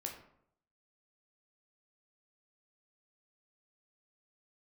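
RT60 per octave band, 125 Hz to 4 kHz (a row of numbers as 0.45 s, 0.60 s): 0.80 s, 0.70 s, 0.70 s, 0.65 s, 0.55 s, 0.40 s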